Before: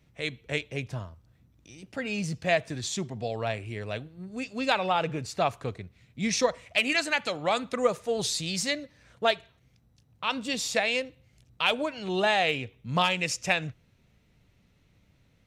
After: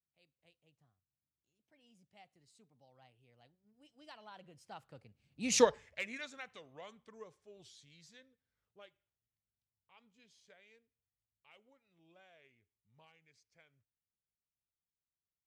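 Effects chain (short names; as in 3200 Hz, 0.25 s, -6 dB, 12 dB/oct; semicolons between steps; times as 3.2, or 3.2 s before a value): Doppler pass-by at 5.6, 44 m/s, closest 2.7 m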